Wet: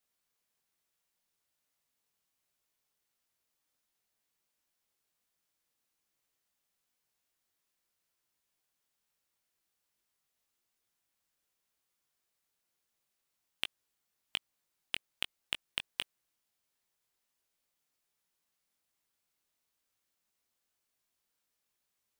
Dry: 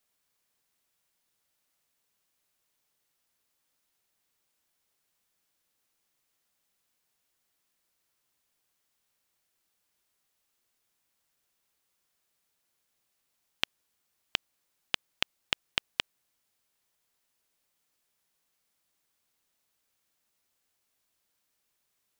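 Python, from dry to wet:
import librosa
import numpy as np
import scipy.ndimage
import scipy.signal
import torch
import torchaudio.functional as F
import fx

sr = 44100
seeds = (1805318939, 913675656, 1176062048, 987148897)

y = np.clip(x, -10.0 ** (-12.0 / 20.0), 10.0 ** (-12.0 / 20.0))
y = fx.chorus_voices(y, sr, voices=2, hz=1.2, base_ms=20, depth_ms=3.0, mix_pct=35)
y = fx.upward_expand(y, sr, threshold_db=-41.0, expansion=1.5)
y = y * librosa.db_to_amplitude(1.5)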